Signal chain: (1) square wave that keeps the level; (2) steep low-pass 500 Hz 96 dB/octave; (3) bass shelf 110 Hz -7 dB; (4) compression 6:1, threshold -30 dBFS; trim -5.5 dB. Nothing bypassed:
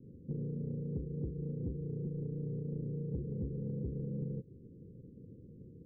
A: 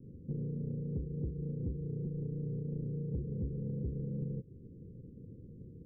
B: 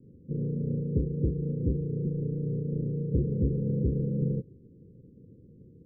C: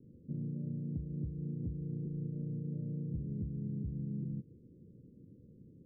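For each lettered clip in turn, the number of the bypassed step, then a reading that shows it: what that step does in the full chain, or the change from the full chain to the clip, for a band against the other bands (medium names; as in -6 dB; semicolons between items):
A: 3, momentary loudness spread change -1 LU; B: 4, crest factor change +3.0 dB; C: 1, distortion -6 dB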